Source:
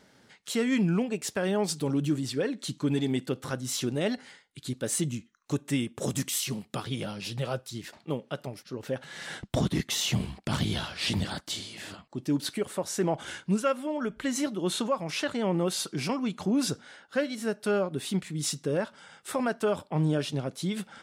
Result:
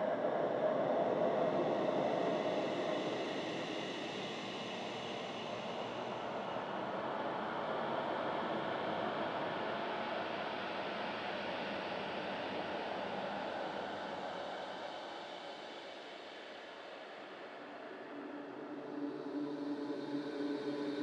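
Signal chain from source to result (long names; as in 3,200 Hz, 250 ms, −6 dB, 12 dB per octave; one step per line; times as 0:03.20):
four-pole ladder band-pass 730 Hz, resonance 30%
transient designer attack −2 dB, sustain +4 dB
extreme stretch with random phases 7.1×, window 1.00 s, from 0:09.43
level +12 dB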